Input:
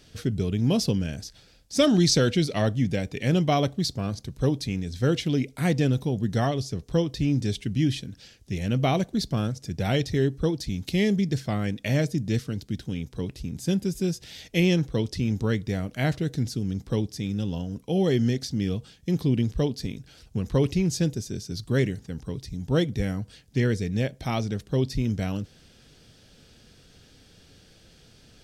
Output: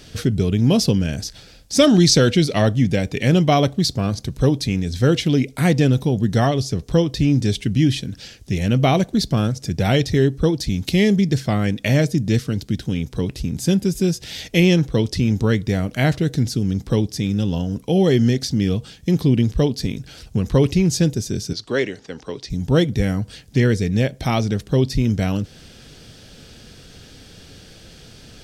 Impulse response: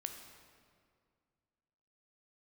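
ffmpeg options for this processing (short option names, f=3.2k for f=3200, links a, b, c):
-filter_complex "[0:a]asettb=1/sr,asplit=3[a][b][c];[a]atrim=end=21.534[d];[b]atrim=start=21.53:end=22.5,asetpts=PTS-STARTPTS,afade=t=in:d=0.004:c=qsin,afade=t=out:st=0.966:d=0.004:c=qsin,acrossover=split=310 6800:gain=0.1 1 0.0891[e][f][g];[e][f][g]amix=inputs=3:normalize=0[h];[c]atrim=start=22.496[i];[d][h]acrossfade=d=0.004:c1=hsin:c2=qsin[j];[j][i]acrossfade=d=0.004:c1=qsin:c2=hsin,asplit=2[k][l];[l]acompressor=threshold=-34dB:ratio=6,volume=-1dB[m];[k][m]amix=inputs=2:normalize=0,volume=5.5dB"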